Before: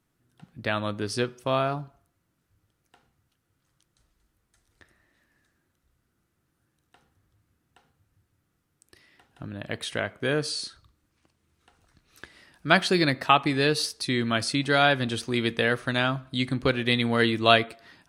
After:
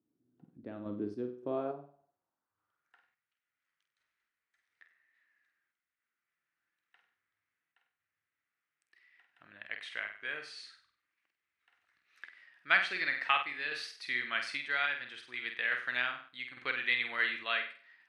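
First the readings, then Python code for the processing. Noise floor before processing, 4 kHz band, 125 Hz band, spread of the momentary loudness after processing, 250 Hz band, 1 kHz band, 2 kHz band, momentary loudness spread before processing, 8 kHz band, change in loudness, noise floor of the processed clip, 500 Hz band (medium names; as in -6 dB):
-76 dBFS, -12.0 dB, under -25 dB, 18 LU, -18.0 dB, -12.0 dB, -4.5 dB, 13 LU, -21.0 dB, -9.0 dB, under -85 dBFS, -16.5 dB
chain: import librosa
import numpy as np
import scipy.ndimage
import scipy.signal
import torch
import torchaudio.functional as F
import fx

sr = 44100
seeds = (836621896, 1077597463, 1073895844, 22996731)

y = fx.room_flutter(x, sr, wall_m=8.3, rt60_s=0.43)
y = fx.filter_sweep_bandpass(y, sr, from_hz=300.0, to_hz=2000.0, start_s=1.35, end_s=3.16, q=2.7)
y = fx.tremolo_random(y, sr, seeds[0], hz=3.5, depth_pct=55)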